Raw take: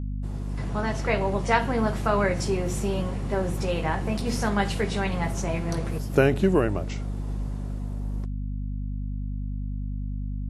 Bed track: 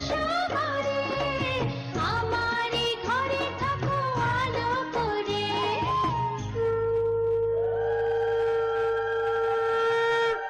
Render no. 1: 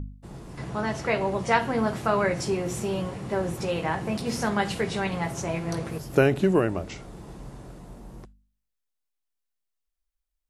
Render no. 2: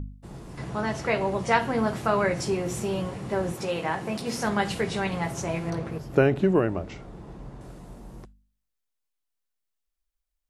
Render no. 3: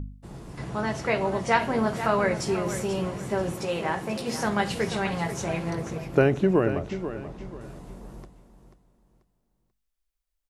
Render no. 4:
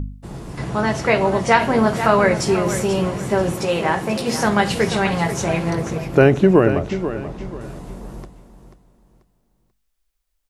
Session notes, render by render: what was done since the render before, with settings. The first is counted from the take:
hum removal 50 Hz, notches 5
0:03.52–0:04.46: high-pass filter 190 Hz 6 dB per octave; 0:05.70–0:07.61: low-pass filter 2,300 Hz 6 dB per octave
repeating echo 487 ms, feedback 31%, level −11 dB
level +8.5 dB; brickwall limiter −2 dBFS, peak gain reduction 3 dB

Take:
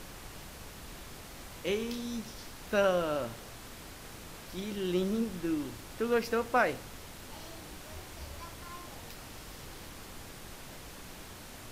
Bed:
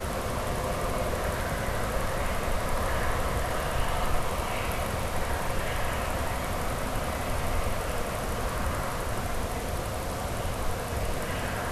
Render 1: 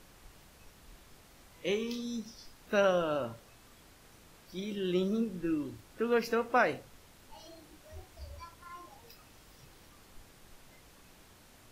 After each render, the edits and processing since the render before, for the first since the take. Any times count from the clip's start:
noise reduction from a noise print 11 dB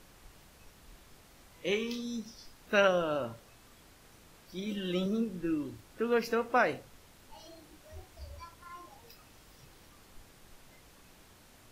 0:01.71–0:02.88: dynamic equaliser 2,200 Hz, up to +8 dB, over −47 dBFS, Q 0.94
0:04.66–0:05.06: comb filter 3.9 ms, depth 69%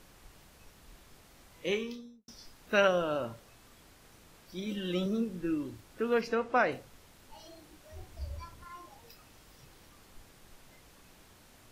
0:01.66–0:02.28: fade out and dull
0:06.21–0:06.72: high-frequency loss of the air 57 metres
0:08.00–0:08.65: low-shelf EQ 230 Hz +8 dB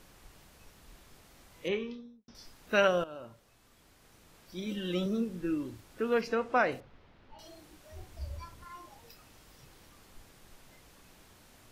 0:01.68–0:02.35: high-frequency loss of the air 210 metres
0:03.04–0:04.65: fade in, from −14 dB
0:06.80–0:07.39: high-frequency loss of the air 290 metres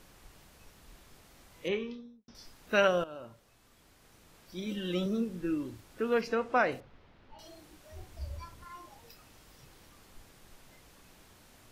no processing that can be heard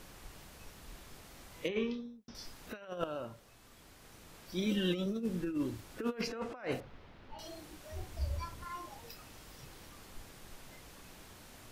compressor whose output falls as the input rises −34 dBFS, ratio −0.5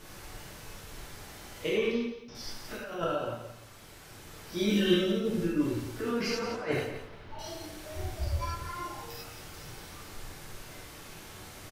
repeating echo 174 ms, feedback 22%, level −10 dB
reverb whose tail is shaped and stops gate 130 ms flat, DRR −6.5 dB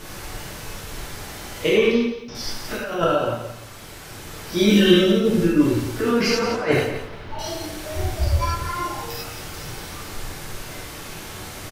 level +11.5 dB
brickwall limiter −3 dBFS, peak gain reduction 2 dB

